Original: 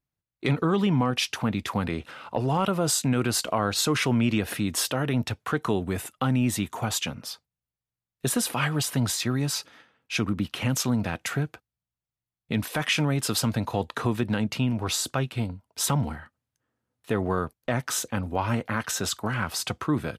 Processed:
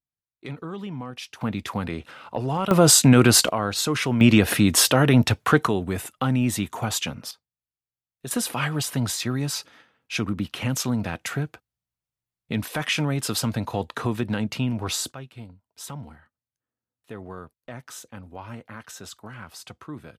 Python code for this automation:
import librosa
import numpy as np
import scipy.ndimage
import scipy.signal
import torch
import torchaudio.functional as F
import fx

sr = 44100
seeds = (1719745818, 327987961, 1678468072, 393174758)

y = fx.gain(x, sr, db=fx.steps((0.0, -11.0), (1.41, -1.0), (2.71, 10.0), (3.49, 0.0), (4.21, 9.0), (5.67, 1.5), (7.31, -9.0), (8.31, 0.0), (15.12, -12.0)))